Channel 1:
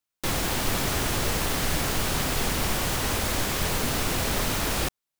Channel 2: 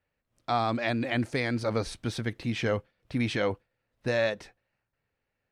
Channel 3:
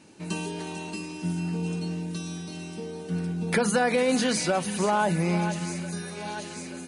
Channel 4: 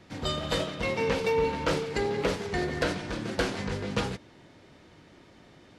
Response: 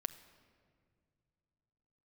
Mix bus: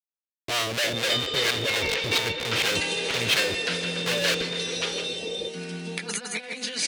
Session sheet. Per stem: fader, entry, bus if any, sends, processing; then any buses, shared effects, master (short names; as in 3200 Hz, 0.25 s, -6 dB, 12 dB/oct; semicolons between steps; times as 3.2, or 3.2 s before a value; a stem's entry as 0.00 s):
-12.0 dB, 0.60 s, no send, no echo send, HPF 62 Hz; small resonant body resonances 470/3600 Hz, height 18 dB, ringing for 35 ms; loudest bins only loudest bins 16
+1.5 dB, 0.00 s, send -15.5 dB, no echo send, comb 1.9 ms, depth 100%; Schmitt trigger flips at -33.5 dBFS; harmonic tremolo 4.3 Hz, depth 70%, crossover 590 Hz
-4.5 dB, 2.45 s, no send, echo send -4 dB, HPF 200 Hz 12 dB/oct; negative-ratio compressor -29 dBFS, ratio -0.5
-4.5 dB, 0.85 s, no send, echo send -8.5 dB, HPF 730 Hz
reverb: on, pre-delay 6 ms
echo: echo 0.161 s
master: weighting filter D